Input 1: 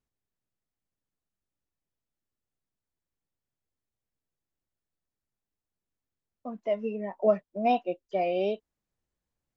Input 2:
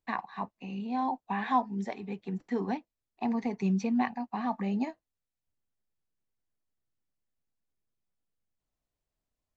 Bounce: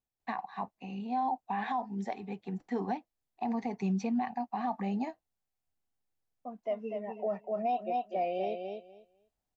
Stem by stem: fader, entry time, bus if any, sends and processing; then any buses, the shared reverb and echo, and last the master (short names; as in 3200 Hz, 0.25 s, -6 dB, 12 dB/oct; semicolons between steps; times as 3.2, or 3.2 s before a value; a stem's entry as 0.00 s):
-7.5 dB, 0.00 s, no send, echo send -6 dB, dry
-2.5 dB, 0.20 s, no send, no echo send, dry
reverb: off
echo: feedback echo 0.246 s, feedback 17%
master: bell 760 Hz +8.5 dB 0.36 oct; limiter -24 dBFS, peak gain reduction 11.5 dB